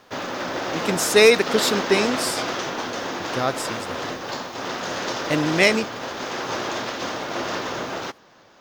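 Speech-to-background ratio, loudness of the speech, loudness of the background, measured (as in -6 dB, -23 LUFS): 7.0 dB, -20.5 LUFS, -27.5 LUFS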